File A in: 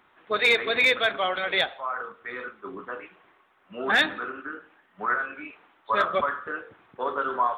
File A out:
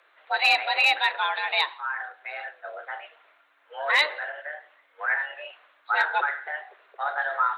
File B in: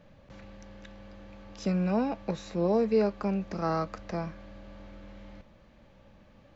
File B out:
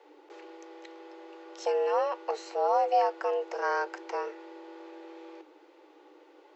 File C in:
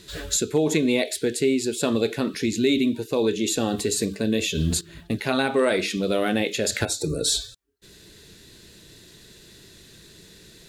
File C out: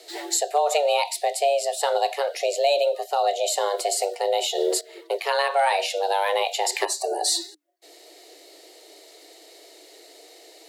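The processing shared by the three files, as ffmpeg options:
-af "afreqshift=290"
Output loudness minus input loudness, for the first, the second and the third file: +0.5, +0.5, 0.0 LU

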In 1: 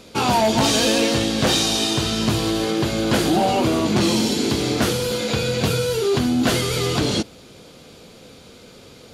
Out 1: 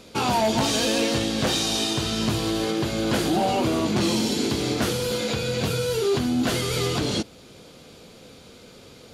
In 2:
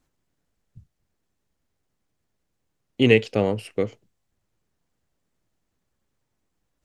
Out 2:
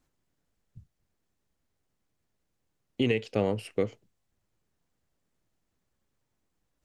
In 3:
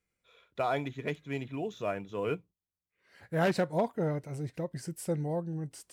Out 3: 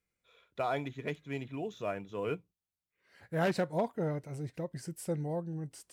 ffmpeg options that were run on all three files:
-af "alimiter=limit=-12dB:level=0:latency=1:release=330,volume=-2.5dB"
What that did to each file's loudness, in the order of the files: -4.0, -8.0, -2.5 LU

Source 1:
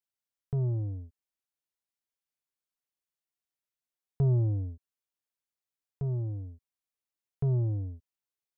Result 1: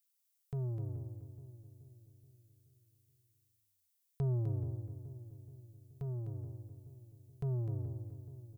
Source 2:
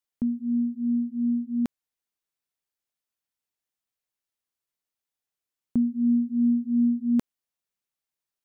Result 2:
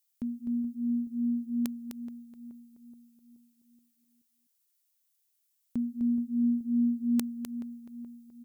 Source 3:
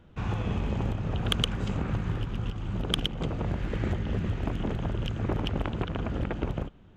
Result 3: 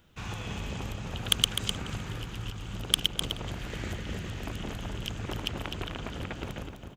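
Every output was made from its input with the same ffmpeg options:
-filter_complex "[0:a]asplit=2[a][b];[b]adelay=426,lowpass=f=850:p=1,volume=-11.5dB,asplit=2[c][d];[d]adelay=426,lowpass=f=850:p=1,volume=0.53,asplit=2[e][f];[f]adelay=426,lowpass=f=850:p=1,volume=0.53,asplit=2[g][h];[h]adelay=426,lowpass=f=850:p=1,volume=0.53,asplit=2[i][j];[j]adelay=426,lowpass=f=850:p=1,volume=0.53,asplit=2[k][l];[l]adelay=426,lowpass=f=850:p=1,volume=0.53[m];[c][e][g][i][k][m]amix=inputs=6:normalize=0[n];[a][n]amix=inputs=2:normalize=0,crystalizer=i=8.5:c=0,asplit=2[o][p];[p]aecho=0:1:254:0.422[q];[o][q]amix=inputs=2:normalize=0,volume=-8.5dB"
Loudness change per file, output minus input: -9.0, -5.5, -2.0 LU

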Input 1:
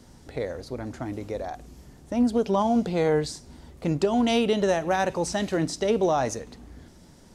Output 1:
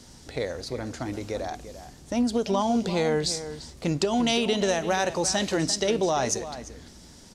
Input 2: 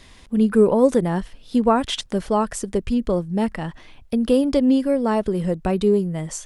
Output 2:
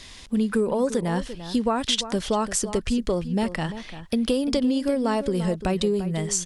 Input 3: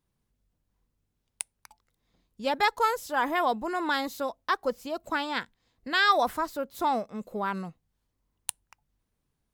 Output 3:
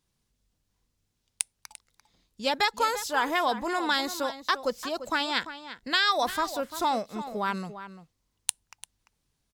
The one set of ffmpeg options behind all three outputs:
-filter_complex "[0:a]equalizer=f=5.4k:w=0.5:g=9.5,acompressor=threshold=-20dB:ratio=5,asplit=2[a][b];[b]adelay=344,volume=-12dB,highshelf=f=4k:g=-7.74[c];[a][c]amix=inputs=2:normalize=0"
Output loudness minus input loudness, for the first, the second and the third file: -0.5, -4.5, +0.5 LU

